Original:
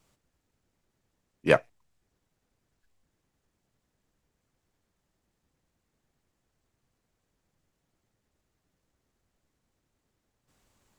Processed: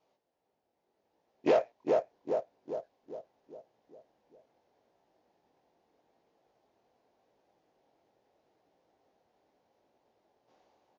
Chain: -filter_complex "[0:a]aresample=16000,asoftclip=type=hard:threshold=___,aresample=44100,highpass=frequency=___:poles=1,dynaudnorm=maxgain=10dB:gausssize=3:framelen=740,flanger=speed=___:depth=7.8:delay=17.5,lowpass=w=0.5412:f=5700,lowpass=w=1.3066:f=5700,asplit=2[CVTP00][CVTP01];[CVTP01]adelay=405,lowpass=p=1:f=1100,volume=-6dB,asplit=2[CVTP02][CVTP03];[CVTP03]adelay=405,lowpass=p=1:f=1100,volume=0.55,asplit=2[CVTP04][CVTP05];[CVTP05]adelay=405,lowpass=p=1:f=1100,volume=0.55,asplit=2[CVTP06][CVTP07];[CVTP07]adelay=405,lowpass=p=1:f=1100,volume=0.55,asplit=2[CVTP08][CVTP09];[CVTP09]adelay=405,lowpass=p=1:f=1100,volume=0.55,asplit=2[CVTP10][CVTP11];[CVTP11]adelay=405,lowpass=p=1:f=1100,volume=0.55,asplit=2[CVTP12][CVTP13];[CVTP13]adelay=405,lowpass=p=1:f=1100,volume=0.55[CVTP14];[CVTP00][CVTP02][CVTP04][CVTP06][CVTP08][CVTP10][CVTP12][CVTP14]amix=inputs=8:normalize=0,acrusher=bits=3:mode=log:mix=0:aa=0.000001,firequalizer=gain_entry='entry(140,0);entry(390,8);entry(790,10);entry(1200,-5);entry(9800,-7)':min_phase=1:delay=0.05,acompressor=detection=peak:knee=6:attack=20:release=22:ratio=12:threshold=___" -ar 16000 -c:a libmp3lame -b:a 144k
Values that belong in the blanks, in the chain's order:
-21.5dB, 690, 0.8, -24dB